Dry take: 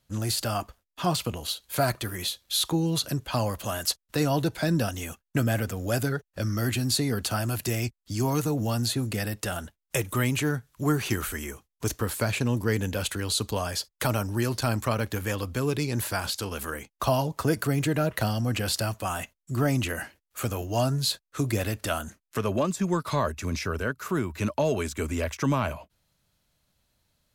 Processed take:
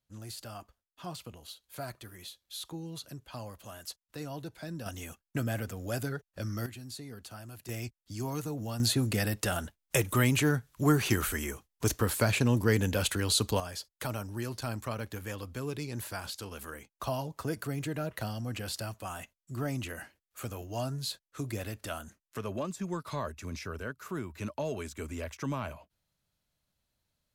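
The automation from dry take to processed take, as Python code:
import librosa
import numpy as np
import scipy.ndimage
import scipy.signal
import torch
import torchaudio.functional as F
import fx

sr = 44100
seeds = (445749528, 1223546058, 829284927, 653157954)

y = fx.gain(x, sr, db=fx.steps((0.0, -15.5), (4.86, -7.5), (6.66, -18.0), (7.69, -9.5), (8.8, 0.0), (13.6, -9.5)))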